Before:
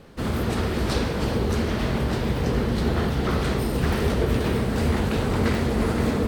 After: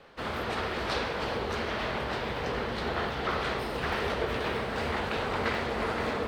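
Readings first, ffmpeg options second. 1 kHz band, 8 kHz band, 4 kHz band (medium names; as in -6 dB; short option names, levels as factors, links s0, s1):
-0.5 dB, -10.5 dB, -2.5 dB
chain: -filter_complex "[0:a]acrossover=split=500 4600:gain=0.178 1 0.178[s0][s1][s2];[s0][s1][s2]amix=inputs=3:normalize=0"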